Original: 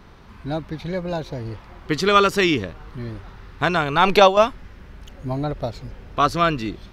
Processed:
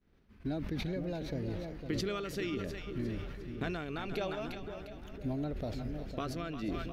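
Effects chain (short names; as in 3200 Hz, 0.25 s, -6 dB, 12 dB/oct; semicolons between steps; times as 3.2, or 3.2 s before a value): expander -33 dBFS; compressor 16:1, threshold -30 dBFS, peak gain reduction 23 dB; ten-band EQ 125 Hz -4 dB, 250 Hz +4 dB, 1000 Hz -12 dB, 4000 Hz -4 dB, 8000 Hz -5 dB; on a send: split-band echo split 690 Hz, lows 0.503 s, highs 0.353 s, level -7.5 dB; on the sum: sustainer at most 32 dB/s; gain -2.5 dB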